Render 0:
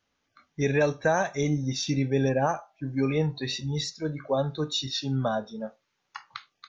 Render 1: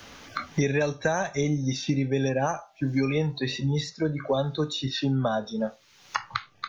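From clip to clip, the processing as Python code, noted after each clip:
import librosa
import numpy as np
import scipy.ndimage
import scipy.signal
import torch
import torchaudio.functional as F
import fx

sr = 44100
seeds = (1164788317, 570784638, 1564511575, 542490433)

y = fx.band_squash(x, sr, depth_pct=100)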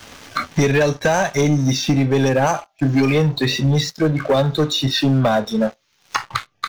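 y = fx.leveller(x, sr, passes=3)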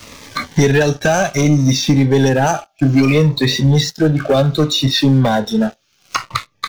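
y = fx.notch_cascade(x, sr, direction='falling', hz=0.63)
y = y * 10.0 ** (4.5 / 20.0)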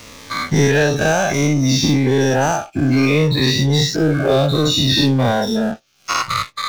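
y = fx.spec_dilate(x, sr, span_ms=120)
y = y * 10.0 ** (-6.0 / 20.0)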